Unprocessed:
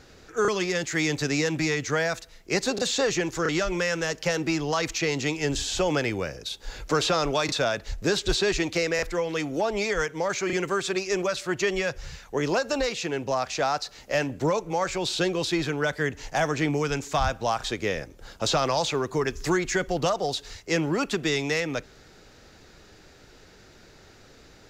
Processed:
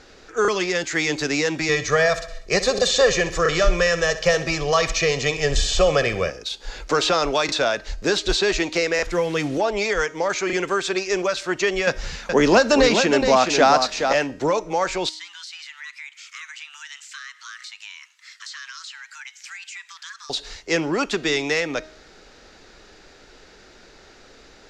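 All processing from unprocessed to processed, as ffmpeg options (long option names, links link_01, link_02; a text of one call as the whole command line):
ffmpeg -i in.wav -filter_complex "[0:a]asettb=1/sr,asplit=3[link_01][link_02][link_03];[link_01]atrim=end=1.694[link_04];[link_02]atrim=start=1.69:end=6.3,asetpts=PTS-STARTPTS,afade=type=in:duration=0.004:curve=qsin,afade=type=out:start_time=4.606:duration=0.004:curve=qsin,lowshelf=frequency=150:gain=9,aecho=1:1:1.7:0.73,atrim=end_sample=203301,aecho=1:1:64|128|192|256|320:0.2|0.106|0.056|0.0297|0.0157,atrim=end_sample=203301[link_05];[link_03]atrim=start=6.296[link_06];[link_04][link_05]acrossfade=duration=0.004:curve1=hsin:curve2=qsin[link_07];[link_07][link_06]acrossfade=duration=0.004:curve1=qsin:curve2=hsin,asettb=1/sr,asplit=3[link_08][link_09][link_10];[link_08]atrim=end=9.074[link_11];[link_09]atrim=start=9.07:end=9.58,asetpts=PTS-STARTPTS,afade=type=in:duration=0.004:curve=qsin,afade=type=out:start_time=0.506:duration=0.004:curve=qsin,equalizer=frequency=110:width_type=o:width=1.5:gain=14.5,acrusher=bits=6:mix=0:aa=0.5[link_12];[link_10]atrim=start=9.576[link_13];[link_11][link_12]acrossfade=duration=0.004:curve1=hsin:curve2=qsin[link_14];[link_14][link_13]acrossfade=duration=0.004:curve1=qsin:curve2=hsin,asettb=1/sr,asplit=3[link_15][link_16][link_17];[link_15]atrim=end=11.874[link_18];[link_16]atrim=start=11.87:end=14.13,asetpts=PTS-STARTPTS,afade=type=in:duration=0.004:curve=qsin,afade=type=out:start_time=2.256:duration=0.004:curve=qsin,equalizer=frequency=220:width=2.8:gain=10.5,acontrast=36,aecho=1:1:421:0.473,atrim=end_sample=99666[link_19];[link_17]atrim=start=14.126[link_20];[link_18][link_19]acrossfade=duration=0.004:curve1=hsin:curve2=qsin[link_21];[link_21][link_20]acrossfade=duration=0.004:curve1=qsin:curve2=hsin,asettb=1/sr,asplit=3[link_22][link_23][link_24];[link_22]atrim=end=15.094[link_25];[link_23]atrim=start=15.09:end=20.3,asetpts=PTS-STARTPTS,afade=type=in:duration=0.004:curve=qsin,afade=type=out:start_time=5.206:duration=0.004:curve=qsin,highpass=frequency=1100:width=0.5412,highpass=frequency=1100:width=1.3066,acompressor=threshold=-42dB:ratio=3:attack=3.2:release=140:knee=1:detection=peak,afreqshift=460[link_26];[link_24]atrim=start=20.296[link_27];[link_25][link_26]acrossfade=duration=0.004:curve1=hsin:curve2=qsin[link_28];[link_28][link_27]acrossfade=duration=0.004:curve1=qsin:curve2=hsin,lowpass=7400,equalizer=frequency=110:width=0.9:gain=-11.5,bandreject=frequency=312.7:width_type=h:width=4,bandreject=frequency=625.4:width_type=h:width=4,bandreject=frequency=938.1:width_type=h:width=4,bandreject=frequency=1250.8:width_type=h:width=4,bandreject=frequency=1563.5:width_type=h:width=4,bandreject=frequency=1876.2:width_type=h:width=4,bandreject=frequency=2188.9:width_type=h:width=4,bandreject=frequency=2501.6:width_type=h:width=4,bandreject=frequency=2814.3:width_type=h:width=4,bandreject=frequency=3127:width_type=h:width=4,bandreject=frequency=3439.7:width_type=h:width=4,bandreject=frequency=3752.4:width_type=h:width=4,bandreject=frequency=4065.1:width_type=h:width=4,bandreject=frequency=4377.8:width_type=h:width=4,bandreject=frequency=4690.5:width_type=h:width=4,bandreject=frequency=5003.2:width_type=h:width=4,bandreject=frequency=5315.9:width_type=h:width=4,bandreject=frequency=5628.6:width_type=h:width=4,bandreject=frequency=5941.3:width_type=h:width=4,bandreject=frequency=6254:width_type=h:width=4,bandreject=frequency=6566.7:width_type=h:width=4,bandreject=frequency=6879.4:width_type=h:width=4,bandreject=frequency=7192.1:width_type=h:width=4,bandreject=frequency=7504.8:width_type=h:width=4,bandreject=frequency=7817.5:width_type=h:width=4,bandreject=frequency=8130.2:width_type=h:width=4,bandreject=frequency=8442.9:width_type=h:width=4,bandreject=frequency=8755.6:width_type=h:width=4,bandreject=frequency=9068.3:width_type=h:width=4,bandreject=frequency=9381:width_type=h:width=4,bandreject=frequency=9693.7:width_type=h:width=4,bandreject=frequency=10006.4:width_type=h:width=4,bandreject=frequency=10319.1:width_type=h:width=4,bandreject=frequency=10631.8:width_type=h:width=4,bandreject=frequency=10944.5:width_type=h:width=4,bandreject=frequency=11257.2:width_type=h:width=4,bandreject=frequency=11569.9:width_type=h:width=4,bandreject=frequency=11882.6:width_type=h:width=4,bandreject=frequency=12195.3:width_type=h:width=4,volume=5dB" out.wav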